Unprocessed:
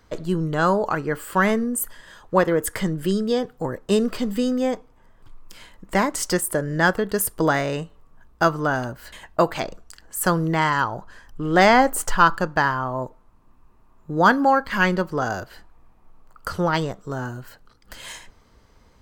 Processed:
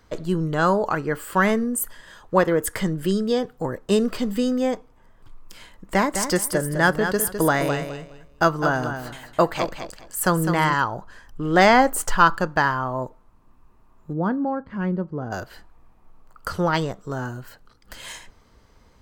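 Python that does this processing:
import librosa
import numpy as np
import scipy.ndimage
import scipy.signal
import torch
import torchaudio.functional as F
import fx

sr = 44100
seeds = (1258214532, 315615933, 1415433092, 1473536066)

y = fx.echo_feedback(x, sr, ms=207, feedback_pct=22, wet_db=-8, at=(6.03, 10.73), fade=0.02)
y = fx.bandpass_q(y, sr, hz=150.0, q=0.66, at=(14.12, 15.31), fade=0.02)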